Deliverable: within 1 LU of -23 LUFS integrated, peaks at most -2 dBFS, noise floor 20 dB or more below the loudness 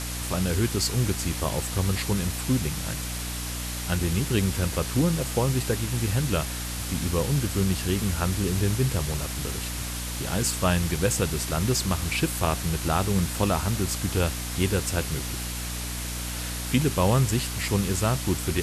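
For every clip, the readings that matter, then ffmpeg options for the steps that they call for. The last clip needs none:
hum 60 Hz; highest harmonic 300 Hz; hum level -32 dBFS; noise floor -32 dBFS; noise floor target -46 dBFS; loudness -26.0 LUFS; peak level -9.0 dBFS; loudness target -23.0 LUFS
-> -af "bandreject=f=60:t=h:w=6,bandreject=f=120:t=h:w=6,bandreject=f=180:t=h:w=6,bandreject=f=240:t=h:w=6,bandreject=f=300:t=h:w=6"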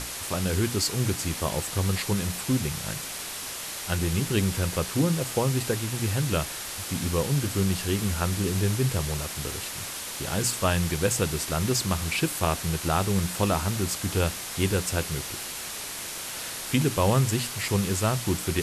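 hum not found; noise floor -36 dBFS; noise floor target -47 dBFS
-> -af "afftdn=nr=11:nf=-36"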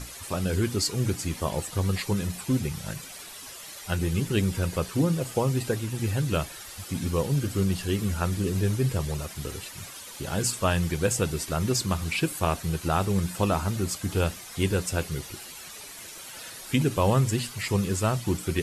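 noise floor -43 dBFS; noise floor target -48 dBFS
-> -af "afftdn=nr=6:nf=-43"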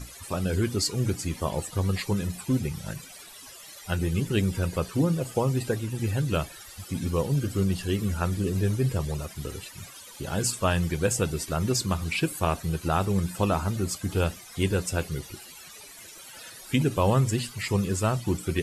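noise floor -46 dBFS; noise floor target -48 dBFS
-> -af "afftdn=nr=6:nf=-46"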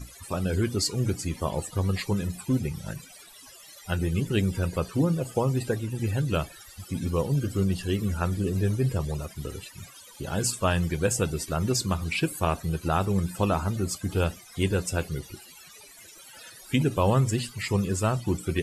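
noise floor -49 dBFS; loudness -27.5 LUFS; peak level -10.5 dBFS; loudness target -23.0 LUFS
-> -af "volume=1.68"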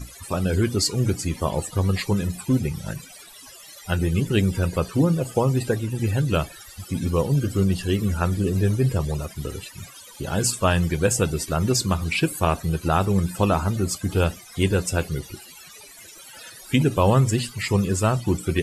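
loudness -23.0 LUFS; peak level -5.5 dBFS; noise floor -45 dBFS

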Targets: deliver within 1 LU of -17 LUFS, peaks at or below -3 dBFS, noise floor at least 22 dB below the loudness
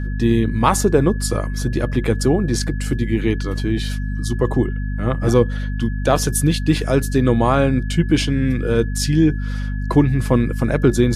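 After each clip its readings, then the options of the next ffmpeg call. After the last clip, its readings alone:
hum 50 Hz; highest harmonic 250 Hz; hum level -20 dBFS; steady tone 1.7 kHz; tone level -37 dBFS; loudness -19.0 LUFS; peak level -1.5 dBFS; loudness target -17.0 LUFS
-> -af "bandreject=f=50:t=h:w=4,bandreject=f=100:t=h:w=4,bandreject=f=150:t=h:w=4,bandreject=f=200:t=h:w=4,bandreject=f=250:t=h:w=4"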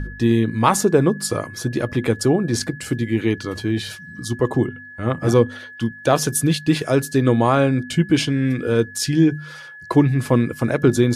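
hum not found; steady tone 1.7 kHz; tone level -37 dBFS
-> -af "bandreject=f=1700:w=30"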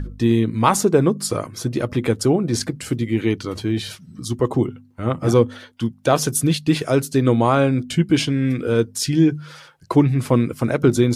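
steady tone not found; loudness -20.0 LUFS; peak level -2.0 dBFS; loudness target -17.0 LUFS
-> -af "volume=1.41,alimiter=limit=0.708:level=0:latency=1"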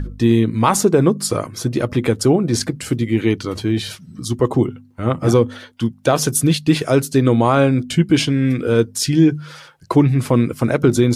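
loudness -17.5 LUFS; peak level -3.0 dBFS; noise floor -45 dBFS

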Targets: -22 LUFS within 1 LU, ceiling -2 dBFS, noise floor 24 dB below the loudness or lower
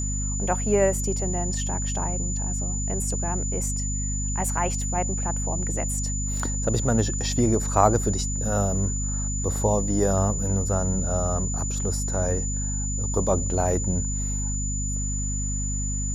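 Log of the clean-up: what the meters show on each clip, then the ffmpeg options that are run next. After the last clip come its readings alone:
hum 50 Hz; highest harmonic 250 Hz; hum level -26 dBFS; steady tone 7 kHz; tone level -30 dBFS; loudness -25.0 LUFS; peak level -4.0 dBFS; loudness target -22.0 LUFS
-> -af "bandreject=f=50:t=h:w=4,bandreject=f=100:t=h:w=4,bandreject=f=150:t=h:w=4,bandreject=f=200:t=h:w=4,bandreject=f=250:t=h:w=4"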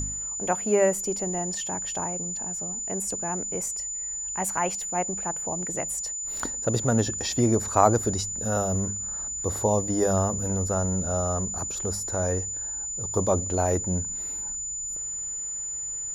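hum not found; steady tone 7 kHz; tone level -30 dBFS
-> -af "bandreject=f=7000:w=30"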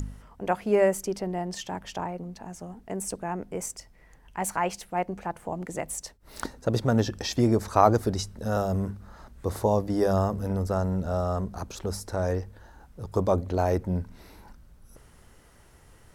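steady tone not found; loudness -28.0 LUFS; peak level -5.0 dBFS; loudness target -22.0 LUFS
-> -af "volume=2,alimiter=limit=0.794:level=0:latency=1"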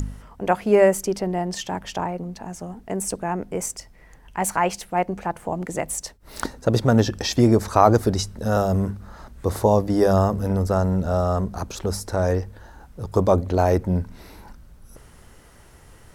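loudness -22.5 LUFS; peak level -2.0 dBFS; noise floor -49 dBFS

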